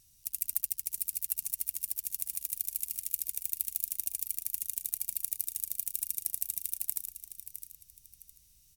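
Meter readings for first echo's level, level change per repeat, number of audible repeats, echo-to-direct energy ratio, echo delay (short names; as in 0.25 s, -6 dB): -10.5 dB, -10.5 dB, 2, -10.0 dB, 0.661 s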